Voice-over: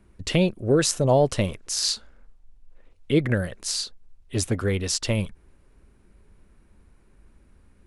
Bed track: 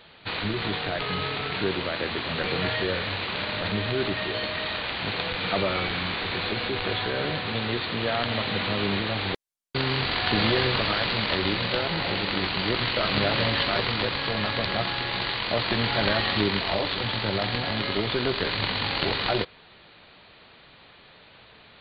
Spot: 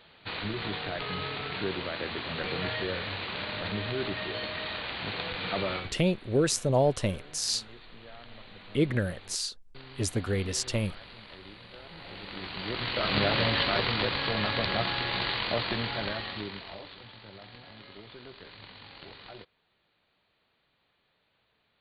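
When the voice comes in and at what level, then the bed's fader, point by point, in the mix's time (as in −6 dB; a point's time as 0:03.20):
5.65 s, −5.0 dB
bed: 0:05.75 −5.5 dB
0:05.98 −22.5 dB
0:11.72 −22.5 dB
0:13.16 −2 dB
0:15.41 −2 dB
0:17.13 −21.5 dB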